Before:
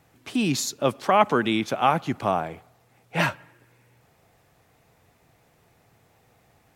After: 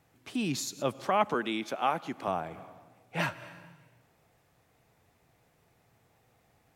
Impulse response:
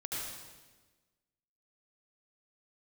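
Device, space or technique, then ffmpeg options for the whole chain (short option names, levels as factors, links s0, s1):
ducked reverb: -filter_complex "[0:a]asplit=3[s0][s1][s2];[1:a]atrim=start_sample=2205[s3];[s1][s3]afir=irnorm=-1:irlink=0[s4];[s2]apad=whole_len=298093[s5];[s4][s5]sidechaincompress=threshold=0.0126:ratio=5:attack=16:release=136,volume=0.266[s6];[s0][s6]amix=inputs=2:normalize=0,asettb=1/sr,asplit=3[s7][s8][s9];[s7]atrim=end=1.344[s10];[s8]atrim=start=1.34:end=2.28,asetpts=PTS-STARTPTS,afade=t=in:d=0.004:c=qsin,afade=t=out:st=0.936:d=0.004:c=qsin,highpass=230[s11];[s9]atrim=start=2.276[s12];[s10][s11]acrossfade=d=0.004:c1=hsin:c2=qsin[s13];[s13][s12]acrossfade=d=0.004:c1=qsin:c2=hsin,volume=0.398"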